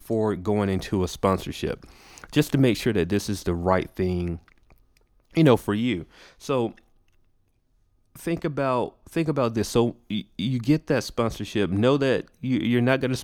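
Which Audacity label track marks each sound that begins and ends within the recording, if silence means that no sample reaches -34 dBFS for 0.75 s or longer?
5.360000	6.710000	sound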